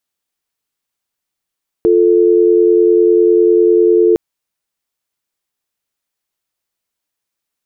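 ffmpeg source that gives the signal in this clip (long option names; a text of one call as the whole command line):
ffmpeg -f lavfi -i "aevalsrc='0.335*(sin(2*PI*350*t)+sin(2*PI*440*t))':duration=2.31:sample_rate=44100" out.wav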